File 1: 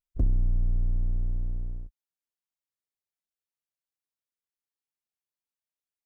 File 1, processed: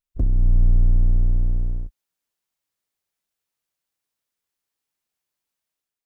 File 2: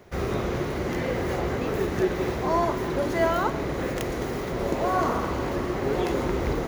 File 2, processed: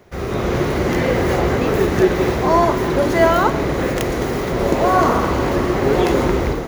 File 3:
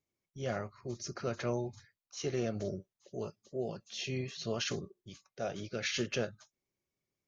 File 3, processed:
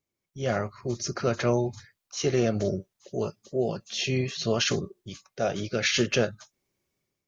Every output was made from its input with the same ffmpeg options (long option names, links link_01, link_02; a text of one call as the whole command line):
ffmpeg -i in.wav -af "dynaudnorm=framelen=160:gausssize=5:maxgain=8dB,volume=2dB" out.wav